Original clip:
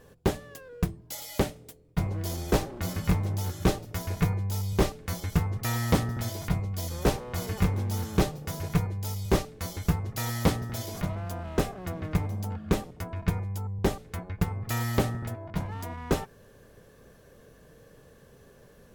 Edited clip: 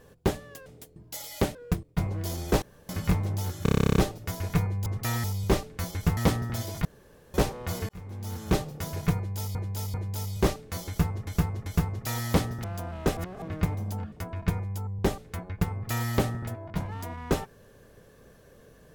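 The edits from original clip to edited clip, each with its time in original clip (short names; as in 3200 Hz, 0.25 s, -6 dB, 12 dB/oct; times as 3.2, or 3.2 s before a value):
0.66–0.94 swap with 1.53–1.83
2.62–2.89 room tone
3.63 stutter 0.03 s, 12 plays
5.46–5.84 move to 4.53
6.52–7.01 room tone
7.56–8.28 fade in linear
8.83–9.22 loop, 3 plays
9.77–10.16 loop, 3 plays
10.75–11.16 cut
11.69–11.94 reverse
12.64–12.92 cut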